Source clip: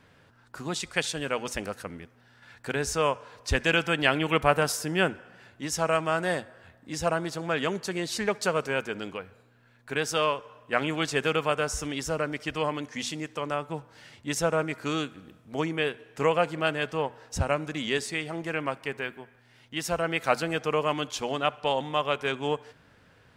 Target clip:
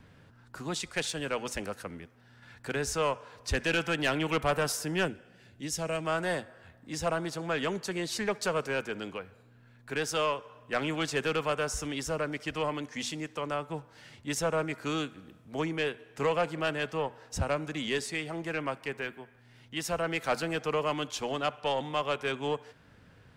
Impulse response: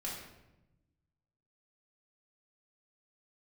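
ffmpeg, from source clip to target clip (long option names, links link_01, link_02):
-filter_complex "[0:a]asettb=1/sr,asplit=3[link_01][link_02][link_03];[link_01]atrim=end=5.054[link_04];[link_02]atrim=start=5.05:end=6.05,asetpts=PTS-STARTPTS,afade=type=in:duration=0.004:curve=qsin,afade=type=out:start_time=0.996:duration=0.004:curve=qsin,equalizer=frequency=1100:width_type=o:width=1.4:gain=-11[link_05];[link_03]atrim=start=6.046[link_06];[link_04][link_05]acrossfade=duration=0.004:curve1=hsin:curve2=qsin[link_07];[link_07][link_06]acrossfade=duration=0.004:curve1=qsin:curve2=hsin,acrossover=split=290|470|1800[link_08][link_09][link_10][link_11];[link_08]acompressor=mode=upward:threshold=-48dB:ratio=2.5[link_12];[link_12][link_09][link_10][link_11]amix=inputs=4:normalize=0,aeval=exprs='(tanh(7.94*val(0)+0.1)-tanh(0.1))/7.94':channel_layout=same,volume=-2dB"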